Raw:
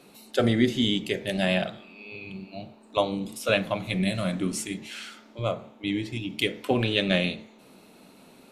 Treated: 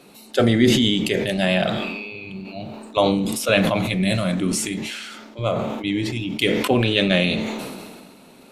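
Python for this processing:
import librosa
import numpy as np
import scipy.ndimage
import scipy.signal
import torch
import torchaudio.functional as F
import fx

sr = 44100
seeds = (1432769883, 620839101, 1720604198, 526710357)

y = fx.sustainer(x, sr, db_per_s=31.0)
y = F.gain(torch.from_numpy(y), 4.5).numpy()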